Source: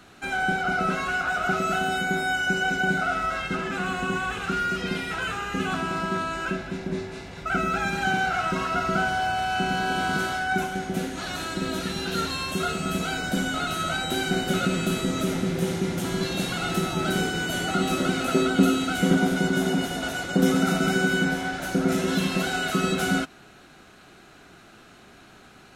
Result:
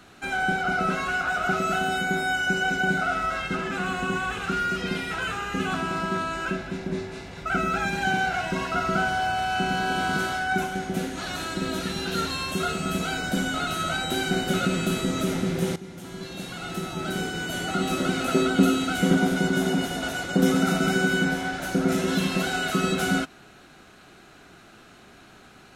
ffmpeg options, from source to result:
-filter_complex "[0:a]asettb=1/sr,asplit=3[s0][s1][s2];[s0]atrim=end=7.864[s3];[s1]atrim=start=7.86:end=8.72,asetpts=PTS-STARTPTS,afade=t=in:d=0.004:c=qsin,afade=t=out:st=0.856:d=0.004:c=qsin,asuperstop=centerf=1300:order=4:qfactor=7.9[s4];[s2]atrim=start=8.716[s5];[s3][s4]acrossfade=d=0.004:c1=hsin:c2=qsin[s6];[s6][s5]acrossfade=d=0.004:c1=qsin:c2=hsin,asplit=2[s7][s8];[s7]atrim=end=15.76,asetpts=PTS-STARTPTS,afade=t=out:st=15.756:d=0.004:c=hsin:silence=0.177828[s9];[s8]atrim=start=15.76,asetpts=PTS-STARTPTS,afade=t=in:d=2.57:silence=0.177828[s10];[s9][s10]concat=n=2:v=0:a=1"

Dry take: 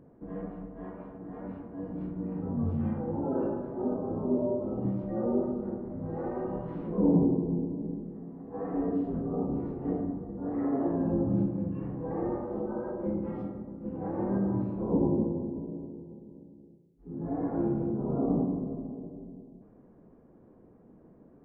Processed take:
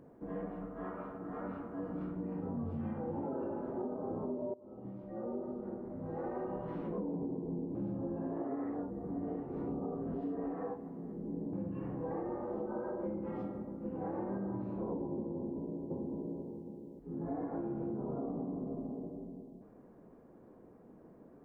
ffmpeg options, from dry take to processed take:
-filter_complex "[0:a]asettb=1/sr,asplit=3[s0][s1][s2];[s0]atrim=end=0.624[s3];[s1]atrim=start=0.62:end=2.15,asetpts=PTS-STARTPTS,afade=t=in:d=0.004:c=qsin,afade=t=out:st=1.526:d=0.004:c=qsin,equalizer=f=1300:w=5.6:g=12.5[s4];[s2]atrim=start=2.146[s5];[s3][s4]acrossfade=d=0.004:c1=hsin:c2=qsin[s6];[s6][s5]acrossfade=d=0.004:c1=qsin:c2=hsin,asplit=2[s7][s8];[s8]afade=t=in:st=2.75:d=0.01,afade=t=out:st=3.37:d=0.01,aecho=0:1:330|660|990|1320|1650:0.298538|0.134342|0.060454|0.0272043|0.0122419[s9];[s7][s9]amix=inputs=2:normalize=0,asplit=2[s10][s11];[s11]afade=t=in:st=15.34:d=0.01,afade=t=out:st=16.43:d=0.01,aecho=0:1:560|1120|1680:0.944061|0.141609|0.0212414[s12];[s10][s12]amix=inputs=2:normalize=0,asplit=4[s13][s14][s15][s16];[s13]atrim=end=4.54,asetpts=PTS-STARTPTS,afade=t=out:st=4.536:d=0.004:c=hsin:silence=0.0841395[s17];[s14]atrim=start=4.54:end=7.752,asetpts=PTS-STARTPTS,afade=t=in:d=2.38:silence=0.0841395[s18];[s15]atrim=start=7.748:end=11.532,asetpts=PTS-STARTPTS,areverse[s19];[s16]atrim=start=11.528[s20];[s17][s18]concat=n=2:v=0:a=1[s21];[s21][s19]acrossfade=d=0.004:c1=hsin:c2=hsin[s22];[s22][s20]acrossfade=d=0.004:c1=hsin:c2=hsin,lowshelf=f=250:g=-8,alimiter=level_in=1.19:limit=0.0631:level=0:latency=1:release=271,volume=0.841,acompressor=threshold=0.0126:ratio=4,volume=1.33"

